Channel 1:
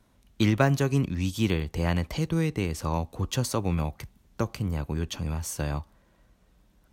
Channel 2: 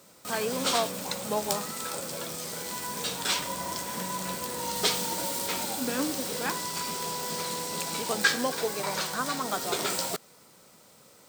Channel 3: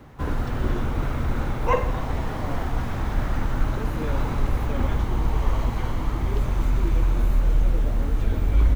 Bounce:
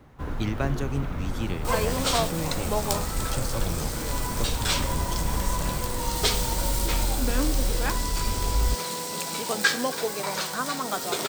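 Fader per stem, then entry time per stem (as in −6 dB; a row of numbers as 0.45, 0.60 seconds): −6.5, +1.5, −6.0 decibels; 0.00, 1.40, 0.00 seconds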